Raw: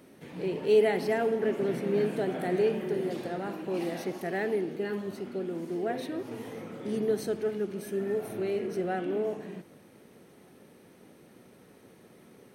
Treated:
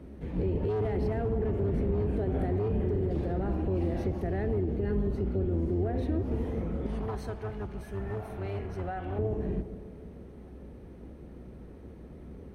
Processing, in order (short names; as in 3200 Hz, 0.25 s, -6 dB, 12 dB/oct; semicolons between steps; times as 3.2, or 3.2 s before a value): octaver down 2 oct, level +3 dB; hard clip -22 dBFS, distortion -12 dB; 6.86–9.19 resonant low shelf 590 Hz -11.5 dB, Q 1.5; compressor, threshold -30 dBFS, peak gain reduction 6.5 dB; HPF 160 Hz 6 dB/oct; analogue delay 0.156 s, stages 1024, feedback 62%, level -14 dB; limiter -28.5 dBFS, peak gain reduction 4.5 dB; tilt -4 dB/oct